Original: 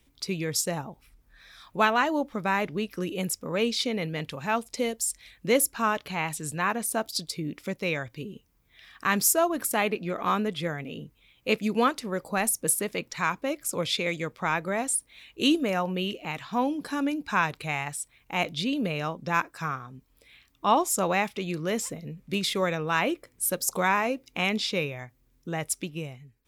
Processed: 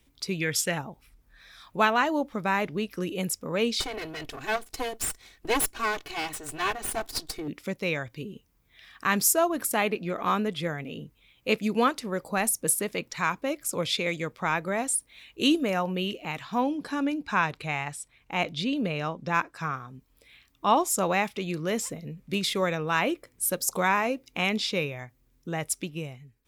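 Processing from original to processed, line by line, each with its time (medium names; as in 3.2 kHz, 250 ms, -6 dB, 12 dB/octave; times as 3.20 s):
0.41–0.78 s: time-frequency box 1.3–3.6 kHz +9 dB
3.80–7.48 s: comb filter that takes the minimum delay 2.7 ms
16.61–19.74 s: treble shelf 10 kHz -12 dB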